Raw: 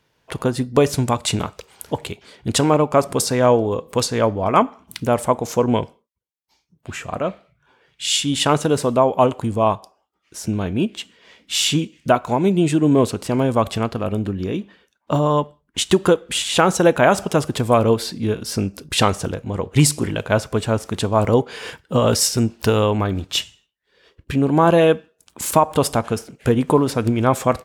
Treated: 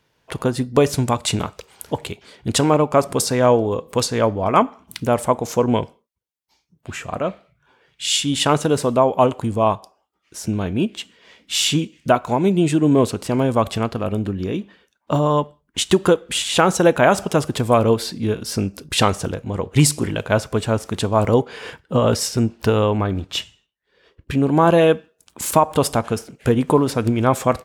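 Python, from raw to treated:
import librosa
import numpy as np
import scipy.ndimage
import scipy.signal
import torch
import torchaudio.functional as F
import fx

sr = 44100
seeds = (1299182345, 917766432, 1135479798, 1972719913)

y = fx.high_shelf(x, sr, hz=3800.0, db=-7.5, at=(21.48, 24.31))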